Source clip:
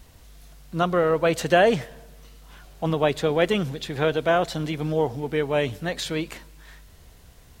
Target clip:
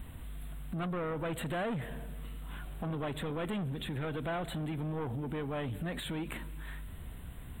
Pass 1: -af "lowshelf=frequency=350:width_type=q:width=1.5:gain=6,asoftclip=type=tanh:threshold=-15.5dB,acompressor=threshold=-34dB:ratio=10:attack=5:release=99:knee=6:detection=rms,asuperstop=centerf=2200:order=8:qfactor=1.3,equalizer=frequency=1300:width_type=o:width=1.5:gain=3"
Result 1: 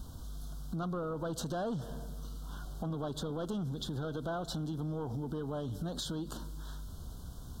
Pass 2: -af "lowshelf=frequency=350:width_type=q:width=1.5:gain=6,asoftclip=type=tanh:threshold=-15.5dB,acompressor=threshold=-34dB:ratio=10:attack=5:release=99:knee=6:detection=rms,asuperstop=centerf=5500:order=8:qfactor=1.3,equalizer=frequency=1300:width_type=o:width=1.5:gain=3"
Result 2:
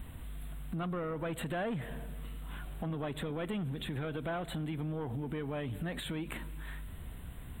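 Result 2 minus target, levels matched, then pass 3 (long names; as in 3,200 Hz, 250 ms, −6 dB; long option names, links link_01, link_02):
soft clipping: distortion −5 dB
-af "lowshelf=frequency=350:width_type=q:width=1.5:gain=6,asoftclip=type=tanh:threshold=-22dB,acompressor=threshold=-34dB:ratio=10:attack=5:release=99:knee=6:detection=rms,asuperstop=centerf=5500:order=8:qfactor=1.3,equalizer=frequency=1300:width_type=o:width=1.5:gain=3"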